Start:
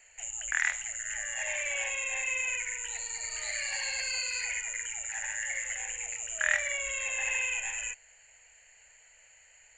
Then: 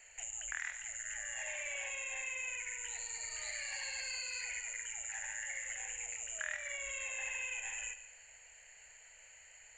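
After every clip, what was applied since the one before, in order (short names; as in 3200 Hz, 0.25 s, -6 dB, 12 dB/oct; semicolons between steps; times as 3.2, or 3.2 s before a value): compressor 2.5:1, threshold -43 dBFS, peak gain reduction 14.5 dB; multi-head echo 72 ms, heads first and second, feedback 43%, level -15 dB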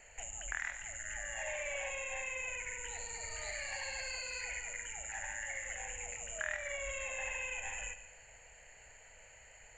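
tilt shelf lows +7.5 dB, about 1100 Hz; gain +5 dB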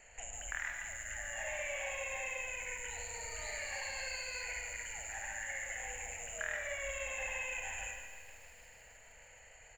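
outdoor echo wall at 24 m, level -9 dB; spring tank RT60 1.1 s, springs 38/52 ms, chirp 25 ms, DRR 4.5 dB; lo-fi delay 0.155 s, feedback 80%, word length 9-bit, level -13.5 dB; gain -1.5 dB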